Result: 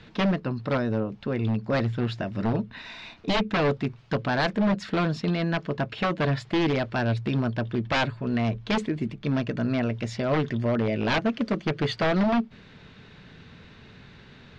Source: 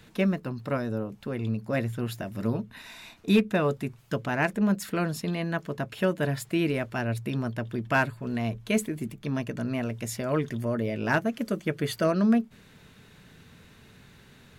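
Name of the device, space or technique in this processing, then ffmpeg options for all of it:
synthesiser wavefolder: -af "aeval=exprs='0.0794*(abs(mod(val(0)/0.0794+3,4)-2)-1)':channel_layout=same,lowpass=frequency=4900:width=0.5412,lowpass=frequency=4900:width=1.3066,volume=4.5dB"

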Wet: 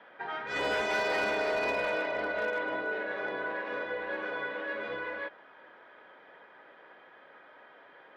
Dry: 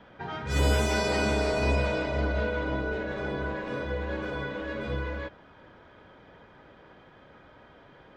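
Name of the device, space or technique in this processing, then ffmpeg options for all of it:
megaphone: -af "highpass=470,lowpass=3300,equalizer=frequency=1800:width_type=o:width=0.44:gain=5,asoftclip=type=hard:threshold=-24dB"

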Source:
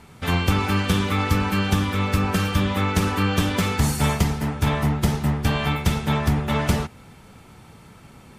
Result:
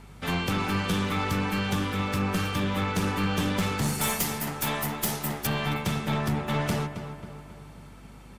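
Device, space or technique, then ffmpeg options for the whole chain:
valve amplifier with mains hum: -filter_complex "[0:a]highpass=frequency=110:width=0.5412,highpass=frequency=110:width=1.3066,asettb=1/sr,asplit=3[link_01][link_02][link_03];[link_01]atrim=end=4.014[link_04];[link_02]atrim=start=4.01:end=5.47,asetpts=PTS-STARTPTS,afade=type=in:duration=0.004:curve=qsin,afade=type=out:start_time=1.456:duration=0.004:curve=qsin,aemphasis=mode=production:type=bsi[link_05];[link_03]atrim=start=5.466[link_06];[link_04][link_05]acrossfade=duration=0.004:curve1=hsin:curve2=qsin[link_07];[link_07][link_06]acrossfade=duration=0.004:curve1=qsin:curve2=hsin,asplit=2[link_08][link_09];[link_09]adelay=269,lowpass=frequency=2700:poles=1,volume=-11dB,asplit=2[link_10][link_11];[link_11]adelay=269,lowpass=frequency=2700:poles=1,volume=0.54,asplit=2[link_12][link_13];[link_13]adelay=269,lowpass=frequency=2700:poles=1,volume=0.54,asplit=2[link_14][link_15];[link_15]adelay=269,lowpass=frequency=2700:poles=1,volume=0.54,asplit=2[link_16][link_17];[link_17]adelay=269,lowpass=frequency=2700:poles=1,volume=0.54,asplit=2[link_18][link_19];[link_19]adelay=269,lowpass=frequency=2700:poles=1,volume=0.54[link_20];[link_08][link_10][link_12][link_14][link_16][link_18][link_20]amix=inputs=7:normalize=0,aeval=exprs='(tanh(6.31*val(0)+0.25)-tanh(0.25))/6.31':channel_layout=same,aeval=exprs='val(0)+0.00562*(sin(2*PI*50*n/s)+sin(2*PI*2*50*n/s)/2+sin(2*PI*3*50*n/s)/3+sin(2*PI*4*50*n/s)/4+sin(2*PI*5*50*n/s)/5)':channel_layout=same,volume=-3dB"

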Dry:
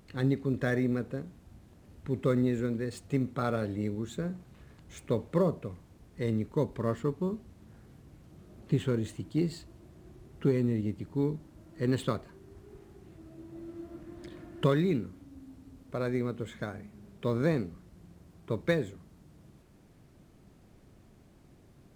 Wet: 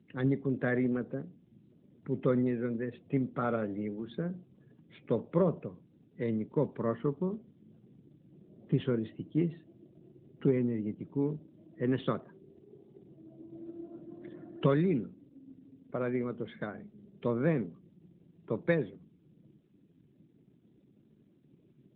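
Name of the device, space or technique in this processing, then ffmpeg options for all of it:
mobile call with aggressive noise cancelling: -af "highpass=frequency=130:width=0.5412,highpass=frequency=130:width=1.3066,afftdn=noise_reduction=27:noise_floor=-55" -ar 8000 -c:a libopencore_amrnb -b:a 12200

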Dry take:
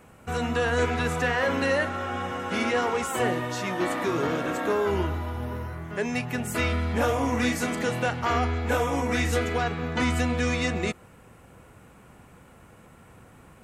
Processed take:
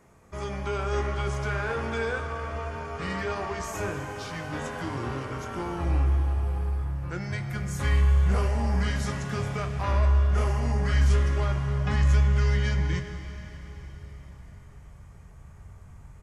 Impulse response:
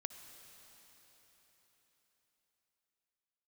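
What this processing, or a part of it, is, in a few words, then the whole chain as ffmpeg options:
slowed and reverbed: -filter_complex "[0:a]asetrate=37044,aresample=44100[link_01];[1:a]atrim=start_sample=2205[link_02];[link_01][link_02]afir=irnorm=-1:irlink=0,bandreject=frequency=51.55:width_type=h:width=4,bandreject=frequency=103.1:width_type=h:width=4,bandreject=frequency=154.65:width_type=h:width=4,bandreject=frequency=206.2:width_type=h:width=4,bandreject=frequency=257.75:width_type=h:width=4,asubboost=boost=8.5:cutoff=100,asplit=2[link_03][link_04];[link_04]adelay=22,volume=-11.5dB[link_05];[link_03][link_05]amix=inputs=2:normalize=0,volume=-2.5dB"

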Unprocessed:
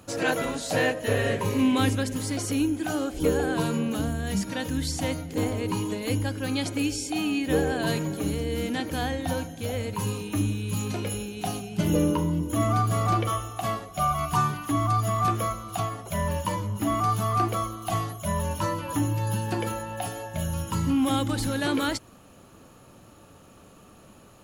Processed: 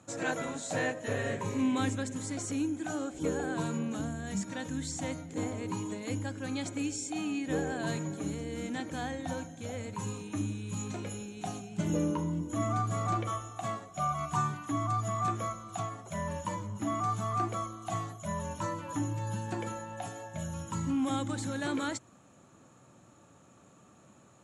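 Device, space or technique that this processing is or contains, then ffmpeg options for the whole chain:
car door speaker: -af "highpass=110,equalizer=frequency=130:width_type=q:width=4:gain=4,equalizer=frequency=450:width_type=q:width=4:gain=-4,equalizer=frequency=2900:width_type=q:width=4:gain=-6,equalizer=frequency=4800:width_type=q:width=4:gain=-8,equalizer=frequency=7400:width_type=q:width=4:gain=8,lowpass=frequency=8500:width=0.5412,lowpass=frequency=8500:width=1.3066,volume=-6.5dB"

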